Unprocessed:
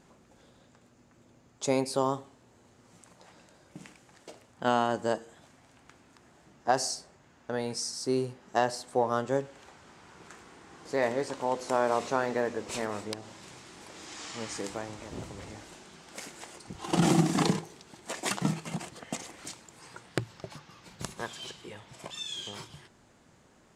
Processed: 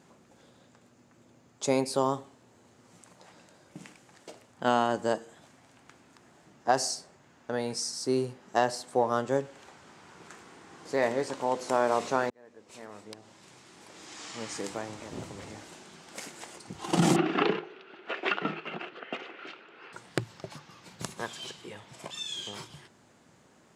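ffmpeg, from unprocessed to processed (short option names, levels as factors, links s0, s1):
-filter_complex "[0:a]asettb=1/sr,asplit=3[s0][s1][s2];[s0]atrim=end=17.164[s3];[s1]atrim=start=17.16:end=19.93,asetpts=PTS-STARTPTS,afade=t=in:d=0.004:c=qsin,afade=t=out:st=2.766:d=0.004:c=qsin,highpass=330,equalizer=f=390:t=q:w=4:g=9,equalizer=f=940:t=q:w=4:g=-4,equalizer=f=1400:t=q:w=4:g=10,equalizer=f=2700:t=q:w=4:g=8,lowpass=f=3300:w=0.5412,lowpass=f=3300:w=1.3066[s4];[s2]atrim=start=19.926[s5];[s3][s4]acrossfade=d=0.004:c1=hsin:c2=qsin[s6];[s6][s5]acrossfade=d=0.004:c1=qsin:c2=hsin,asplit=2[s7][s8];[s7]atrim=end=12.3,asetpts=PTS-STARTPTS,afade=t=out:st=12.296:d=0.004:c=hsin[s9];[s8]atrim=start=12.3,asetpts=PTS-STARTPTS,afade=t=in:d=2.51[s10];[s9][s10]concat=n=2:v=0:a=1,highpass=98,volume=1.12"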